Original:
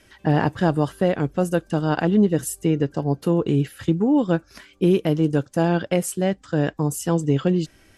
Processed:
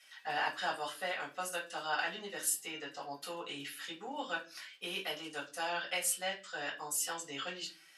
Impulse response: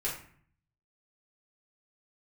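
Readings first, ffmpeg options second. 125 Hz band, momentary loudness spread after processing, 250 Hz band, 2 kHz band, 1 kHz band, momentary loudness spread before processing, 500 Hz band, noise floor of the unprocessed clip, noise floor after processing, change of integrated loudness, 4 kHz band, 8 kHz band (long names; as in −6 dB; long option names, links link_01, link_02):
−37.5 dB, 9 LU, −30.5 dB, −4.0 dB, −9.5 dB, 5 LU, −20.5 dB, −56 dBFS, −60 dBFS, −15.5 dB, −1.0 dB, −3.0 dB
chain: -filter_complex "[0:a]highpass=1500[link_01];[1:a]atrim=start_sample=2205,asetrate=83790,aresample=44100[link_02];[link_01][link_02]afir=irnorm=-1:irlink=0"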